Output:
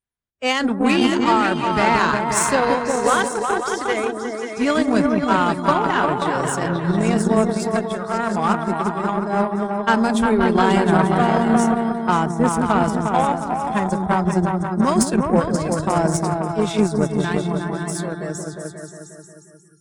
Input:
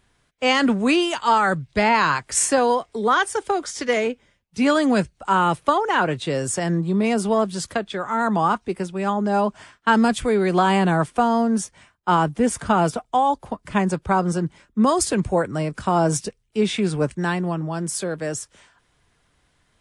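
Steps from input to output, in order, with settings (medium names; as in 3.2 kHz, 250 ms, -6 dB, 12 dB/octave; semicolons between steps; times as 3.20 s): delay with an opening low-pass 178 ms, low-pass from 400 Hz, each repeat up 2 oct, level 0 dB; spectral noise reduction 25 dB; Chebyshev shaper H 7 -25 dB, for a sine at -2.5 dBFS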